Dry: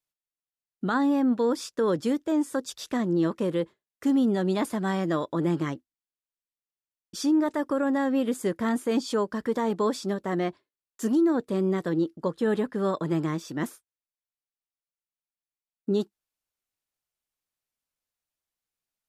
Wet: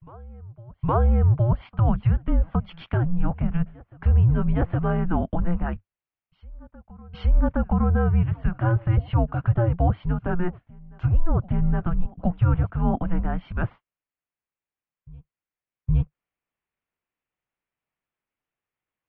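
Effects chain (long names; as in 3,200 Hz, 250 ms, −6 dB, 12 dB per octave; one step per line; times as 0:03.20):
treble cut that deepens with the level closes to 1,800 Hz, closed at −23 dBFS
single-sideband voice off tune −350 Hz 170–3,100 Hz
backwards echo 816 ms −23.5 dB
level +5.5 dB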